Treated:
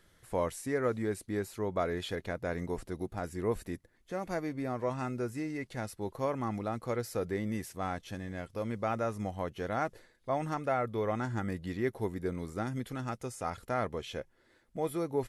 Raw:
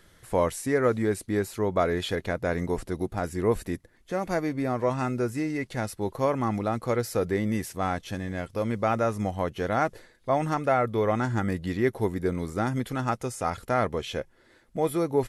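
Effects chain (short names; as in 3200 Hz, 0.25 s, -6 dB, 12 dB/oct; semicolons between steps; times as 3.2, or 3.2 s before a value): 12.62–13.23 dynamic EQ 930 Hz, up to -5 dB, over -37 dBFS, Q 1; gain -7.5 dB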